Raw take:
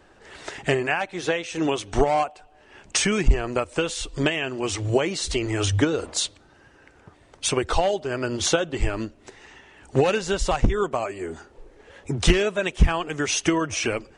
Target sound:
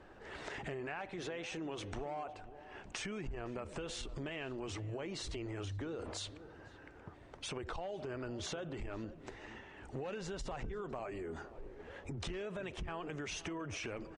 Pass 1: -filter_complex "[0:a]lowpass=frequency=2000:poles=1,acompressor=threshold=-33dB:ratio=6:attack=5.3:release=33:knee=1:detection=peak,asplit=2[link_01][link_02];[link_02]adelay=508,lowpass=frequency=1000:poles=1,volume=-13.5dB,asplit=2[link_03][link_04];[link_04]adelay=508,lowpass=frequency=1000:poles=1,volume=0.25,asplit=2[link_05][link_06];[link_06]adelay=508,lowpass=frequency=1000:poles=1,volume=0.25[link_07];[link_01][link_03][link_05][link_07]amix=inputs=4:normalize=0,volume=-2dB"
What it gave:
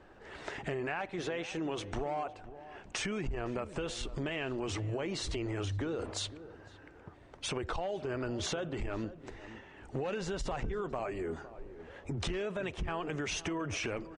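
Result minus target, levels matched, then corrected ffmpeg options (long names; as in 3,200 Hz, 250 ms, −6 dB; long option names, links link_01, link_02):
downward compressor: peak gain reduction −6 dB
-filter_complex "[0:a]lowpass=frequency=2000:poles=1,acompressor=threshold=-40.5dB:ratio=6:attack=5.3:release=33:knee=1:detection=peak,asplit=2[link_01][link_02];[link_02]adelay=508,lowpass=frequency=1000:poles=1,volume=-13.5dB,asplit=2[link_03][link_04];[link_04]adelay=508,lowpass=frequency=1000:poles=1,volume=0.25,asplit=2[link_05][link_06];[link_06]adelay=508,lowpass=frequency=1000:poles=1,volume=0.25[link_07];[link_01][link_03][link_05][link_07]amix=inputs=4:normalize=0,volume=-2dB"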